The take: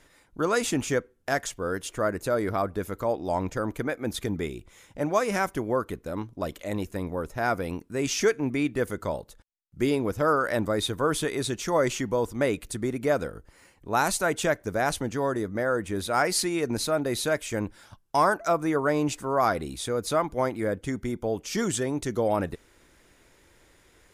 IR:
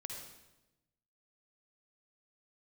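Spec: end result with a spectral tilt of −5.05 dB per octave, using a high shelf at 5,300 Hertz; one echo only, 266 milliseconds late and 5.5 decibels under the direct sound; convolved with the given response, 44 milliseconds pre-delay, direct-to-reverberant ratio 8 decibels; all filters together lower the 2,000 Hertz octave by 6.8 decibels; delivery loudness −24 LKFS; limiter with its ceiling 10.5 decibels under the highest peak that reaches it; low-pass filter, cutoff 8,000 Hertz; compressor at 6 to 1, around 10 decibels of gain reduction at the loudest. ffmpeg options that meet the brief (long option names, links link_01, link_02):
-filter_complex "[0:a]lowpass=8000,equalizer=frequency=2000:width_type=o:gain=-9,highshelf=frequency=5300:gain=-7.5,acompressor=threshold=-30dB:ratio=6,alimiter=level_in=5.5dB:limit=-24dB:level=0:latency=1,volume=-5.5dB,aecho=1:1:266:0.531,asplit=2[link_01][link_02];[1:a]atrim=start_sample=2205,adelay=44[link_03];[link_02][link_03]afir=irnorm=-1:irlink=0,volume=-5.5dB[link_04];[link_01][link_04]amix=inputs=2:normalize=0,volume=14dB"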